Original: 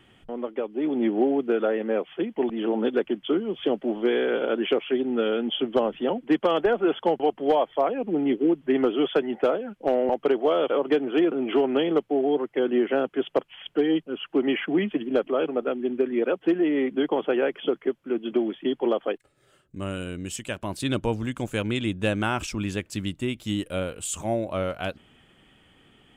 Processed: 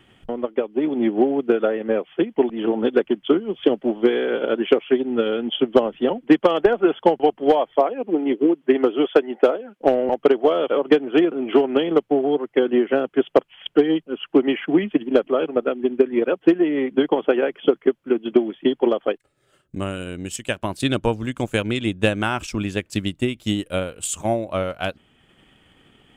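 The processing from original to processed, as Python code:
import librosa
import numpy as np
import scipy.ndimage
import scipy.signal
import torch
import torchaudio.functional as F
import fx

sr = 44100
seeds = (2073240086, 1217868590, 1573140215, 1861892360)

y = fx.cheby1_highpass(x, sr, hz=300.0, order=2, at=(7.8, 9.81))
y = fx.transient(y, sr, attack_db=7, sustain_db=-4)
y = F.gain(torch.from_numpy(y), 2.0).numpy()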